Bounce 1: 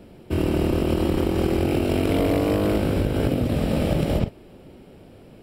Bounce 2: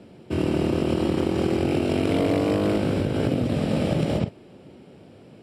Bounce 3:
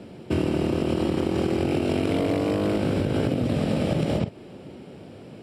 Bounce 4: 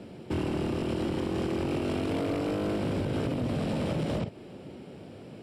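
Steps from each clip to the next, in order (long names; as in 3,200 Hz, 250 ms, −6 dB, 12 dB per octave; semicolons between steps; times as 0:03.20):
Chebyshev band-pass filter 120–7,600 Hz, order 2
downward compressor, threshold −25 dBFS, peak gain reduction 8 dB; level +5 dB
soft clipping −22 dBFS, distortion −12 dB; level −2.5 dB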